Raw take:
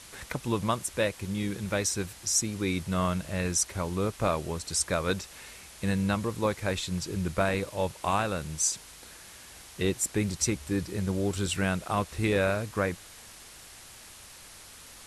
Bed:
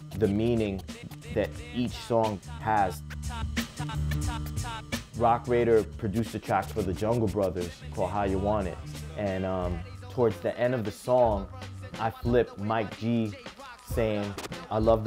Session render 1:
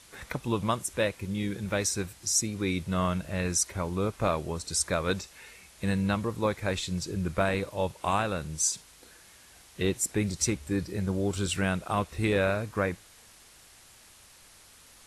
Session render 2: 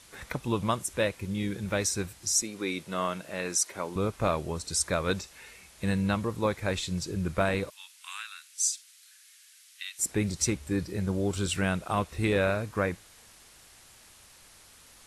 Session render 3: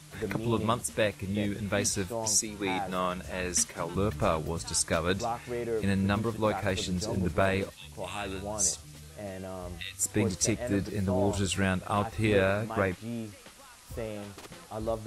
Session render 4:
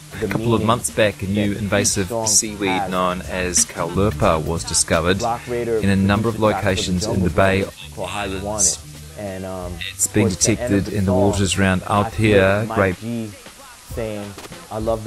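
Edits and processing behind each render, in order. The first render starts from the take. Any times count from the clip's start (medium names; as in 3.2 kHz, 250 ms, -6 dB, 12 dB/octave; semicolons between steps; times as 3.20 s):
noise print and reduce 6 dB
2.42–3.96 s: high-pass 280 Hz; 7.70–9.99 s: Bessel high-pass 2.4 kHz, order 8
add bed -9.5 dB
trim +11 dB; peak limiter -2 dBFS, peak gain reduction 1 dB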